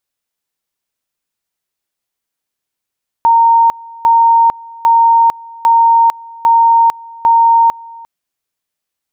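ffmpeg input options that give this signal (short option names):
-f lavfi -i "aevalsrc='pow(10,(-5-24*gte(mod(t,0.8),0.45))/20)*sin(2*PI*922*t)':d=4.8:s=44100"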